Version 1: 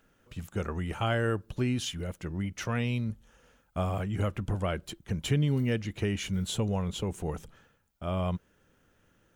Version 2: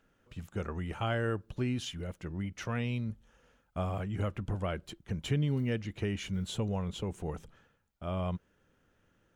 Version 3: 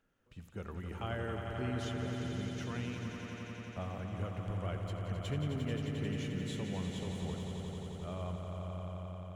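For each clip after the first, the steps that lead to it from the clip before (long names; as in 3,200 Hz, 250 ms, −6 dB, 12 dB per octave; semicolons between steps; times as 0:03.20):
high-shelf EQ 7,200 Hz −8 dB; level −3.5 dB
echo that builds up and dies away 88 ms, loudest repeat 5, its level −8 dB; level −7.5 dB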